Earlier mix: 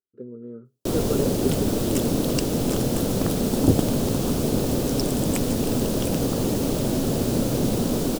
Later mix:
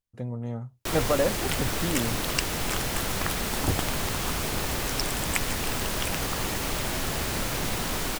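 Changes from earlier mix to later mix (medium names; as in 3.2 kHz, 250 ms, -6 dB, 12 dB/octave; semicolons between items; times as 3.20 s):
speech: remove two resonant band-passes 750 Hz, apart 1.8 oct; master: add graphic EQ 125/250/500/1000/2000 Hz -7/-12/-9/+4/+11 dB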